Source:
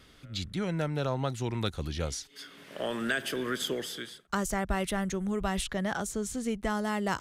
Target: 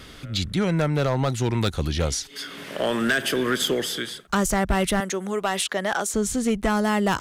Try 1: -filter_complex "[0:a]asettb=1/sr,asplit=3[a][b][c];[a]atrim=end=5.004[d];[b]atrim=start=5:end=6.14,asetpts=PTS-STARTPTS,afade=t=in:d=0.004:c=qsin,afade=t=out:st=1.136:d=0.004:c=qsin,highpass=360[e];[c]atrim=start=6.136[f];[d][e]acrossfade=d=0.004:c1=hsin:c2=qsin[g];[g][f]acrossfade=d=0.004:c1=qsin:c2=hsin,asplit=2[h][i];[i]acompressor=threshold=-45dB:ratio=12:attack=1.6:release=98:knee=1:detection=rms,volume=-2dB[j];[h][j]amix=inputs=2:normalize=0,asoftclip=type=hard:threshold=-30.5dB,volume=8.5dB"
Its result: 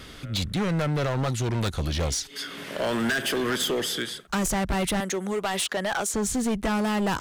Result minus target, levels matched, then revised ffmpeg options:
hard clip: distortion +9 dB
-filter_complex "[0:a]asettb=1/sr,asplit=3[a][b][c];[a]atrim=end=5.004[d];[b]atrim=start=5:end=6.14,asetpts=PTS-STARTPTS,afade=t=in:d=0.004:c=qsin,afade=t=out:st=1.136:d=0.004:c=qsin,highpass=360[e];[c]atrim=start=6.136[f];[d][e]acrossfade=d=0.004:c1=hsin:c2=qsin[g];[g][f]acrossfade=d=0.004:c1=qsin:c2=hsin,asplit=2[h][i];[i]acompressor=threshold=-45dB:ratio=12:attack=1.6:release=98:knee=1:detection=rms,volume=-2dB[j];[h][j]amix=inputs=2:normalize=0,asoftclip=type=hard:threshold=-23.5dB,volume=8.5dB"

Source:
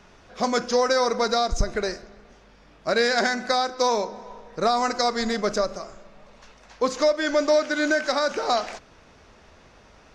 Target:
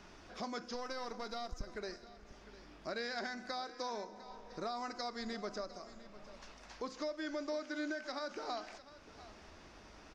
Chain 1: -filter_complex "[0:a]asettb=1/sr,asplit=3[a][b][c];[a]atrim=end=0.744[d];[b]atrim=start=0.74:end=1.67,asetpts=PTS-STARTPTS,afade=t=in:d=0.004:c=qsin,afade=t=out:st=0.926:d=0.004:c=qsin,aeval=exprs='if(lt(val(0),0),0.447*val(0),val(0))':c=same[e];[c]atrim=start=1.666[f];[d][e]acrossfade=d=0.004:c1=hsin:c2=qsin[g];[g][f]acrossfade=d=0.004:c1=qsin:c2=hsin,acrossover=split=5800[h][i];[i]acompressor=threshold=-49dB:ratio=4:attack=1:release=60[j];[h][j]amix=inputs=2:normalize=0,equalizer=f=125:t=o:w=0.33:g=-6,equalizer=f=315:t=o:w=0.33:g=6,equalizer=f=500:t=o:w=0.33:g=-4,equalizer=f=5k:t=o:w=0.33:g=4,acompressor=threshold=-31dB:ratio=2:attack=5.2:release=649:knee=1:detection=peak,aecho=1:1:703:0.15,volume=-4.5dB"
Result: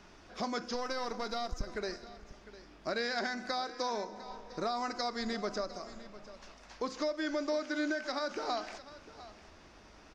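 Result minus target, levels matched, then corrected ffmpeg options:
compressor: peak gain reduction -6 dB
-filter_complex "[0:a]asettb=1/sr,asplit=3[a][b][c];[a]atrim=end=0.744[d];[b]atrim=start=0.74:end=1.67,asetpts=PTS-STARTPTS,afade=t=in:d=0.004:c=qsin,afade=t=out:st=0.926:d=0.004:c=qsin,aeval=exprs='if(lt(val(0),0),0.447*val(0),val(0))':c=same[e];[c]atrim=start=1.666[f];[d][e]acrossfade=d=0.004:c1=hsin:c2=qsin[g];[g][f]acrossfade=d=0.004:c1=qsin:c2=hsin,acrossover=split=5800[h][i];[i]acompressor=threshold=-49dB:ratio=4:attack=1:release=60[j];[h][j]amix=inputs=2:normalize=0,equalizer=f=125:t=o:w=0.33:g=-6,equalizer=f=315:t=o:w=0.33:g=6,equalizer=f=500:t=o:w=0.33:g=-4,equalizer=f=5k:t=o:w=0.33:g=4,acompressor=threshold=-43dB:ratio=2:attack=5.2:release=649:knee=1:detection=peak,aecho=1:1:703:0.15,volume=-4.5dB"

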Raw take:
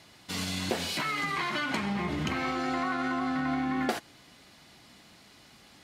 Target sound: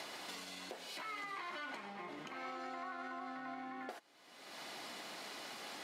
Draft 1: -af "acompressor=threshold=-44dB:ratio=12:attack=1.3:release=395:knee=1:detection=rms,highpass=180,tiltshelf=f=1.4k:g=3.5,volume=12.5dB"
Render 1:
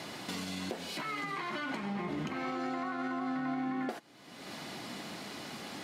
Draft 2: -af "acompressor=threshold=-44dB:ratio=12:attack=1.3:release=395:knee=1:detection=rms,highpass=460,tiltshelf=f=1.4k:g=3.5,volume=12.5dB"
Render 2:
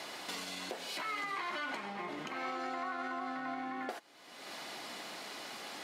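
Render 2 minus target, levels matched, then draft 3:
compressor: peak gain reduction -6.5 dB
-af "acompressor=threshold=-51dB:ratio=12:attack=1.3:release=395:knee=1:detection=rms,highpass=460,tiltshelf=f=1.4k:g=3.5,volume=12.5dB"

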